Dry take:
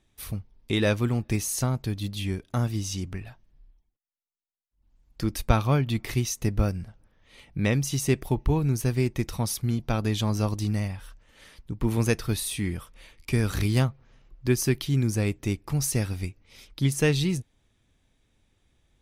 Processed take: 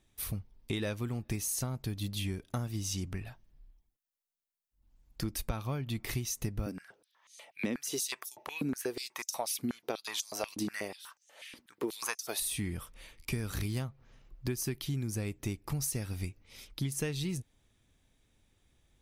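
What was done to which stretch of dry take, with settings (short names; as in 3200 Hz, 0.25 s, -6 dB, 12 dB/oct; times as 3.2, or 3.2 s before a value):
6.66–12.4 stepped high-pass 8.2 Hz 260–6200 Hz
whole clip: high shelf 8800 Hz +7.5 dB; compressor 10:1, threshold -28 dBFS; gain -2.5 dB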